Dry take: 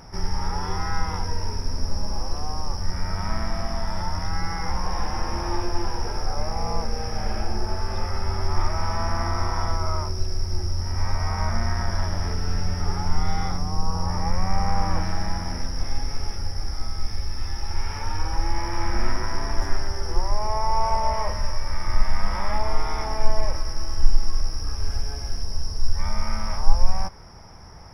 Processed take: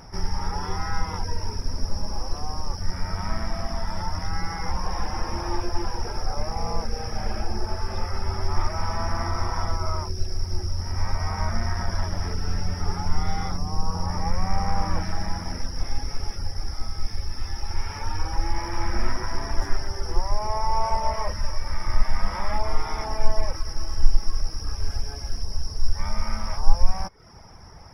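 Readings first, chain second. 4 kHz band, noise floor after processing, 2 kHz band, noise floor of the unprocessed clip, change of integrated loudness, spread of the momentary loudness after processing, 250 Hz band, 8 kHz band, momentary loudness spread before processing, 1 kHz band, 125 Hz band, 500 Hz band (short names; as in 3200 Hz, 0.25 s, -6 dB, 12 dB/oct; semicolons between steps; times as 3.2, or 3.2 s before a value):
-1.5 dB, -36 dBFS, -1.5 dB, -31 dBFS, -1.5 dB, 6 LU, -1.5 dB, n/a, 6 LU, -1.5 dB, -1.5 dB, -1.5 dB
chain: reverb removal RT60 0.54 s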